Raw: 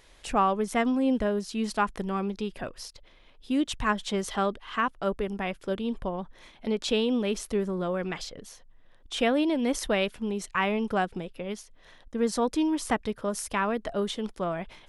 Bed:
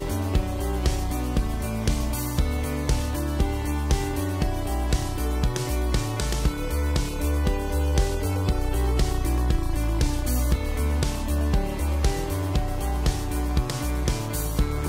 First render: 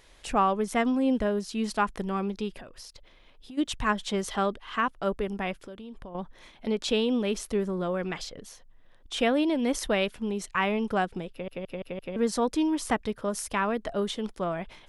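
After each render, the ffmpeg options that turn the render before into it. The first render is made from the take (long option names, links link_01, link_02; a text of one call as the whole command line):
ffmpeg -i in.wav -filter_complex "[0:a]asplit=3[link_01][link_02][link_03];[link_01]afade=type=out:start_time=2.59:duration=0.02[link_04];[link_02]acompressor=threshold=-40dB:ratio=16:attack=3.2:release=140:knee=1:detection=peak,afade=type=in:start_time=2.59:duration=0.02,afade=type=out:start_time=3.57:duration=0.02[link_05];[link_03]afade=type=in:start_time=3.57:duration=0.02[link_06];[link_04][link_05][link_06]amix=inputs=3:normalize=0,asettb=1/sr,asplit=3[link_07][link_08][link_09];[link_07]atrim=end=5.634[link_10];[link_08]atrim=start=5.63:end=6.15,asetpts=PTS-STARTPTS,afade=type=in:duration=0.004:curve=qsin,afade=type=out:start_time=0.516:duration=0.004:curve=qsin,acompressor=threshold=-40dB:ratio=5:attack=3.2:release=140:knee=1:detection=peak[link_11];[link_09]atrim=start=6.146[link_12];[link_10][link_11]acrossfade=duration=0.004:curve1=hsin:curve2=qsin[link_13];[link_13][link_12]acrossfade=duration=0.004:curve1=qsin:curve2=hsin,asplit=6[link_14][link_15][link_16][link_17][link_18][link_19];[link_14]atrim=end=11.482[link_20];[link_15]atrim=start=11.308:end=11.482[link_21];[link_16]atrim=start=11.308:end=11.482[link_22];[link_17]atrim=start=11.308:end=11.482[link_23];[link_18]atrim=start=11.308:end=11.482[link_24];[link_19]atrim=start=12.158[link_25];[link_20][link_21]acrossfade=duration=0.004:curve1=hsin:curve2=hsin[link_26];[link_26][link_22]acrossfade=duration=0.004:curve1=hsin:curve2=hsin[link_27];[link_27][link_23]acrossfade=duration=0.004:curve1=hsin:curve2=hsin[link_28];[link_28][link_24]acrossfade=duration=0.004:curve1=hsin:curve2=hsin[link_29];[link_29][link_25]acrossfade=duration=0.004:curve1=hsin:curve2=hsin" out.wav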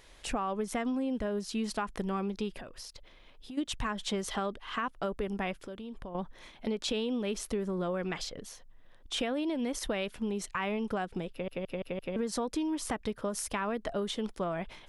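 ffmpeg -i in.wav -af "alimiter=limit=-18.5dB:level=0:latency=1:release=88,acompressor=threshold=-29dB:ratio=6" out.wav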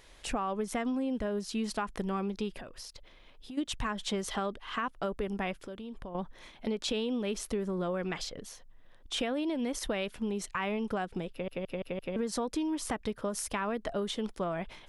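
ffmpeg -i in.wav -af anull out.wav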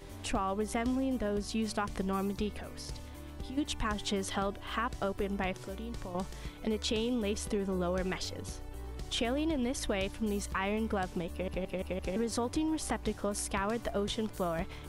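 ffmpeg -i in.wav -i bed.wav -filter_complex "[1:a]volume=-20dB[link_01];[0:a][link_01]amix=inputs=2:normalize=0" out.wav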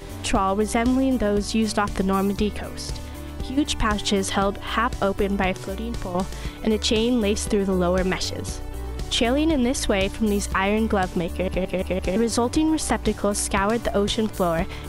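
ffmpeg -i in.wav -af "volume=11.5dB" out.wav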